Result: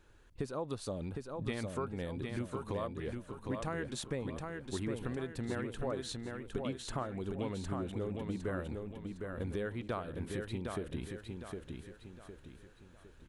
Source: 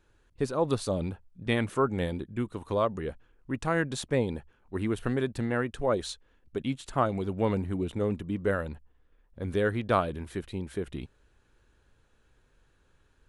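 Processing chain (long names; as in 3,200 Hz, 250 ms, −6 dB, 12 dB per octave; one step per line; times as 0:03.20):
downward compressor 5 to 1, threshold −39 dBFS, peak gain reduction 18 dB
on a send: repeating echo 759 ms, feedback 40%, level −4.5 dB
on the sum: level +2.5 dB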